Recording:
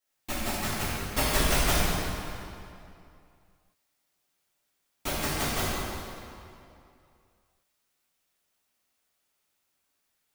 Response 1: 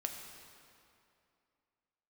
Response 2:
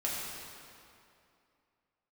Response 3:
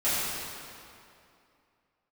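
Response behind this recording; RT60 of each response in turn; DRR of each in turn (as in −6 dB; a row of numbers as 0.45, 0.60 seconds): 3; 2.6, 2.6, 2.6 seconds; 2.5, −6.0, −14.0 decibels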